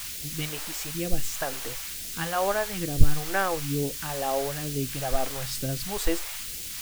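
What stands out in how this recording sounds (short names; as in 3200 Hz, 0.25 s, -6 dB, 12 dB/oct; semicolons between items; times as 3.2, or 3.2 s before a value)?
a quantiser's noise floor 6-bit, dither triangular; phasing stages 2, 1.1 Hz, lowest notch 130–1000 Hz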